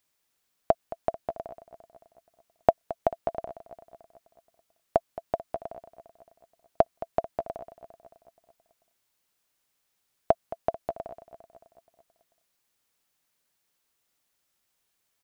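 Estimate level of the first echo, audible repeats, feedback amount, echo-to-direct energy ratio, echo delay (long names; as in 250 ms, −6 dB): −15.5 dB, 5, 59%, −13.5 dB, 220 ms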